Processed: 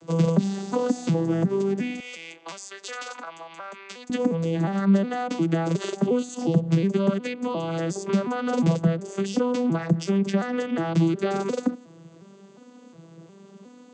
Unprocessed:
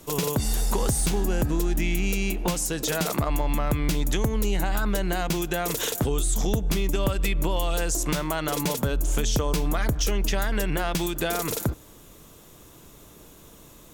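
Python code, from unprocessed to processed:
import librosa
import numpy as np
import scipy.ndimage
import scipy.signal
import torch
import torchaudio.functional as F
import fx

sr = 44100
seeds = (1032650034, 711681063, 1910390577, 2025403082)

y = fx.vocoder_arp(x, sr, chord='minor triad', root=52, every_ms=359)
y = fx.highpass(y, sr, hz=1200.0, slope=12, at=(2.0, 4.1))
y = F.gain(torch.from_numpy(y), 5.0).numpy()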